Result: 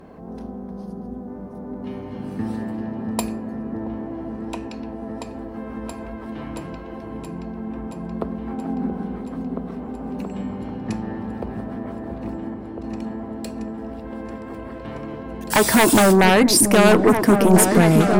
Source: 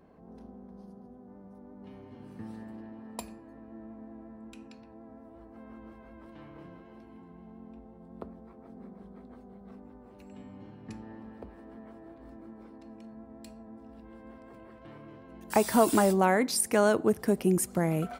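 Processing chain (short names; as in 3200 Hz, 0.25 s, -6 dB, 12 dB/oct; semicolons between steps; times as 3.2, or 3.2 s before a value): sine folder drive 11 dB, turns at -9.5 dBFS; 8.47–9.16 small resonant body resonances 270/800/1500 Hz, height 12 dB; 12.38–12.84 level quantiser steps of 11 dB; on a send: repeats that get brighter 0.676 s, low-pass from 400 Hz, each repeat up 2 oct, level -3 dB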